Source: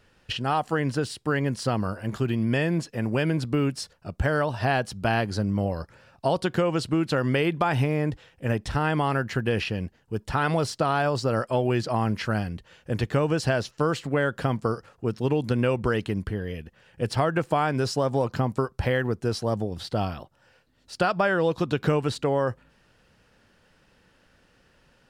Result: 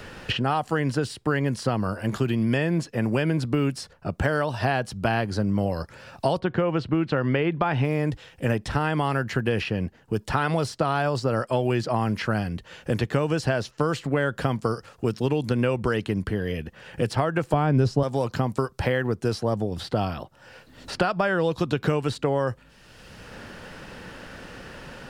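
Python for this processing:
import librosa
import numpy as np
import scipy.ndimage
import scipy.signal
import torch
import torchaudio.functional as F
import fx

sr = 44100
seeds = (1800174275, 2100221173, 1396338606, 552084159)

y = fx.lowpass(x, sr, hz=fx.line((6.38, 1900.0), (7.83, 3600.0)), slope=12, at=(6.38, 7.83), fade=0.02)
y = fx.tilt_eq(y, sr, slope=-4.0, at=(17.53, 18.03))
y = fx.band_squash(y, sr, depth_pct=70)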